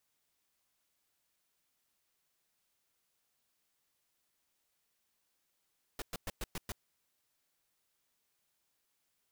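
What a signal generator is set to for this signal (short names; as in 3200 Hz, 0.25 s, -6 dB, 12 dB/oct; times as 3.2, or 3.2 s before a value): noise bursts pink, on 0.03 s, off 0.11 s, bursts 6, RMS -39 dBFS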